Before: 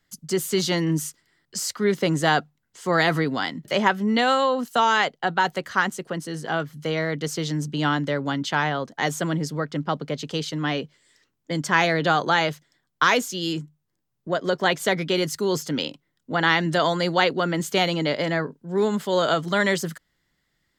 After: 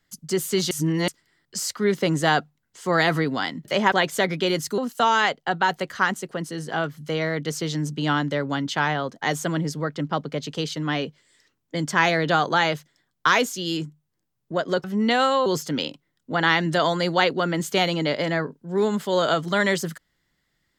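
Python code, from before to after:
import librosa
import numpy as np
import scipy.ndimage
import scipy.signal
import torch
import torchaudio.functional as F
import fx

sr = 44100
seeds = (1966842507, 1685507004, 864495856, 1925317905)

y = fx.edit(x, sr, fx.reverse_span(start_s=0.71, length_s=0.37),
    fx.swap(start_s=3.92, length_s=0.62, other_s=14.6, other_length_s=0.86), tone=tone)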